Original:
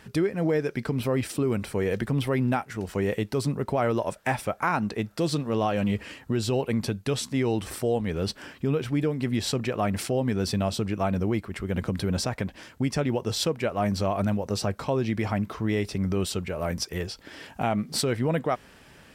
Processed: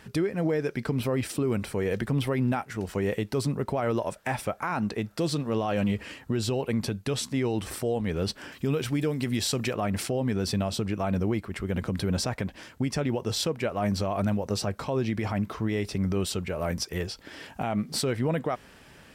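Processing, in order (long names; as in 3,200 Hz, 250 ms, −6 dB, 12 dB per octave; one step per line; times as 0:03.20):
0:08.52–0:09.74: high-shelf EQ 3,400 Hz +9.5 dB
brickwall limiter −18.5 dBFS, peak gain reduction 7 dB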